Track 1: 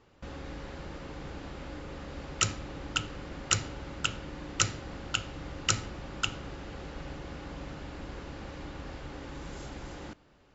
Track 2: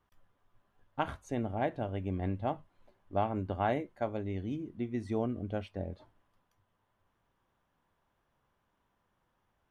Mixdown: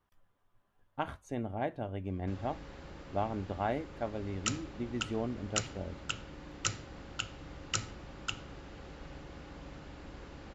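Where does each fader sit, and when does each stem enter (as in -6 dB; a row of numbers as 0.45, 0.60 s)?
-6.5, -2.5 dB; 2.05, 0.00 s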